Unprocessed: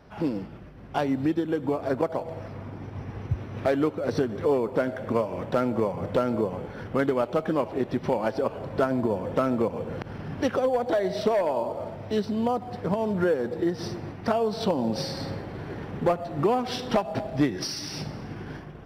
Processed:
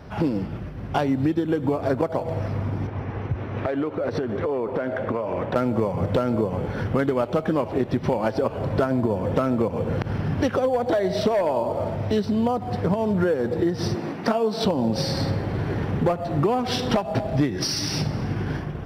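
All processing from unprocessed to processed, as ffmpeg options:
-filter_complex "[0:a]asettb=1/sr,asplit=3[s0][s1][s2];[s0]atrim=end=2.874[s3];[s1]atrim=start=2.87:end=5.56,asetpts=PTS-STARTPTS,afade=t=in:d=0.004:c=qsin,afade=t=out:st=2.686:d=0.004:c=qsin,bass=f=250:g=-8,treble=f=4000:g=-13,acompressor=threshold=0.0355:ratio=6:attack=3.2:release=140:knee=1:detection=peak[s4];[s2]atrim=start=5.556[s5];[s3][s4]acrossfade=d=0.004:c1=hsin:c2=qsin[s6];[s6][s5]acrossfade=d=0.004:c1=qsin:c2=hsin,asettb=1/sr,asplit=3[s7][s8][s9];[s7]atrim=end=13.954[s10];[s8]atrim=start=13.95:end=14.65,asetpts=PTS-STARTPTS,afade=t=in:d=0.004:c=qsin,afade=t=out:st=0.696:d=0.004:c=qsin,highpass=f=180:w=0.5412,highpass=f=180:w=1.3066,asplit=2[s11][s12];[s12]adelay=18,volume=0.282[s13];[s11][s13]amix=inputs=2:normalize=0,atrim=end_sample=30870[s14];[s9]atrim=start=14.646[s15];[s10][s14]acrossfade=d=0.004:c1=hsin:c2=qsin[s16];[s16][s15]acrossfade=d=0.004:c1=qsin:c2=hsin,equalizer=f=88:t=o:w=1.8:g=6,acompressor=threshold=0.0316:ratio=2.5,volume=2.66"

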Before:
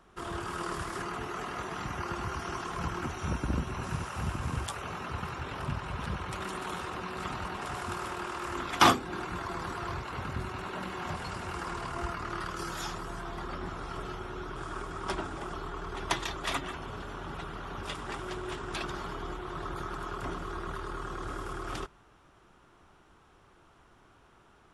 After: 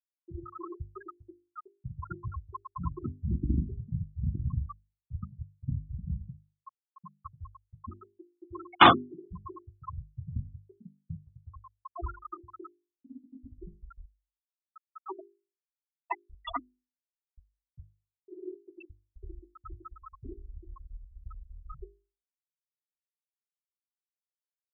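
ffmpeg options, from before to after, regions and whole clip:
-filter_complex "[0:a]asettb=1/sr,asplit=3[s0][s1][s2];[s0]atrim=end=12.754[s3];[s1]atrim=start=12.75:end=13.56,asetpts=PTS-STARTPTS,afade=t=in:d=0.004:c=qsin,afade=t=out:st=0.806:d=0.004:c=qsin,bandreject=f=920:w=8.5,afreqshift=-300[s4];[s2]atrim=start=13.556[s5];[s3][s4]acrossfade=d=0.004:c1=hsin:c2=qsin[s6];[s6][s5]acrossfade=d=0.004:c1=qsin:c2=hsin,asettb=1/sr,asplit=3[s7][s8][s9];[s7]atrim=end=14.154[s10];[s8]atrim=start=14.15:end=16.23,asetpts=PTS-STARTPTS,afade=t=in:d=0.004:c=qsin,afade=t=out:st=2.076:d=0.004:c=qsin,highpass=370,lowpass=3100,asoftclip=type=hard:threshold=0.0531[s11];[s9]atrim=start=16.226[s12];[s10][s11]acrossfade=d=0.004:c1=hsin:c2=qsin[s13];[s13][s12]acrossfade=d=0.004:c1=qsin:c2=hsin,highshelf=f=4600:t=q:w=1.5:g=-9.5,afftfilt=real='re*gte(hypot(re,im),0.112)':imag='im*gte(hypot(re,im),0.112)':win_size=1024:overlap=0.75,bandreject=f=50:t=h:w=6,bandreject=f=100:t=h:w=6,bandreject=f=150:t=h:w=6,bandreject=f=200:t=h:w=6,bandreject=f=250:t=h:w=6,bandreject=f=300:t=h:w=6,bandreject=f=350:t=h:w=6,bandreject=f=400:t=h:w=6,volume=1.68"

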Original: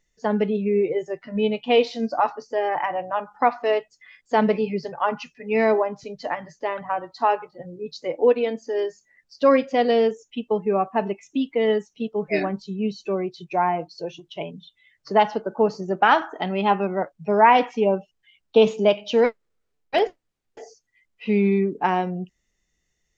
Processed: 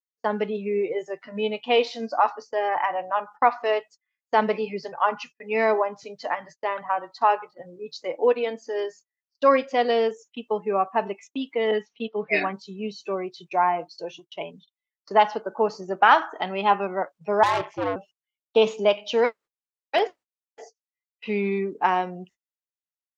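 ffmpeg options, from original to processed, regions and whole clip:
-filter_complex "[0:a]asettb=1/sr,asplit=3[s0][s1][s2];[s0]atrim=end=11.714[s3];[s1]atrim=start=11.71:end=12.53,asetpts=PTS-STARTPTS,afade=t=in:d=0.004:c=qsin,afade=t=out:st=0.816:d=0.004:c=qsin,lowpass=f=3900:w=0.5412,lowpass=f=3900:w=1.3066,aecho=1:1:4.3:0.38,atrim=end_sample=36162,adynamicequalizer=threshold=0.0112:dfrequency=1600:dqfactor=0.7:tfrequency=1600:tqfactor=0.7:attack=5:release=100:ratio=0.375:range=3.5:mode=boostabove:tftype=highshelf[s4];[s2]atrim=start=12.526[s5];[s3][s4]acrossfade=d=0.004:c1=hsin:c2=qsin[s6];[s6][s5]acrossfade=d=0.004:c1=qsin:c2=hsin,asettb=1/sr,asplit=3[s7][s8][s9];[s7]atrim=end=17.434[s10];[s8]atrim=start=17.43:end=17.96,asetpts=PTS-STARTPTS,afade=t=in:d=0.004:c=qsin,afade=t=out:st=0.526:d=0.004:c=qsin,equalizer=f=330:t=o:w=1.2:g=9.5,aeval=exprs='(tanh(7.08*val(0)+0.7)-tanh(0.7))/7.08':c=same,aeval=exprs='val(0)*sin(2*PI*100*n/s)':c=same[s11];[s9]atrim=start=17.956[s12];[s10][s11]acrossfade=d=0.004:c1=hsin:c2=qsin[s13];[s13][s12]acrossfade=d=0.004:c1=qsin:c2=hsin,agate=range=0.02:threshold=0.00794:ratio=16:detection=peak,highpass=f=490:p=1,equalizer=f=1100:t=o:w=0.77:g=3.5"

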